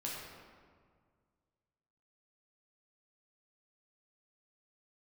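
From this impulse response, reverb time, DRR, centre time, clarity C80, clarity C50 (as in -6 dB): 1.9 s, -4.5 dB, 98 ms, 1.5 dB, -0.5 dB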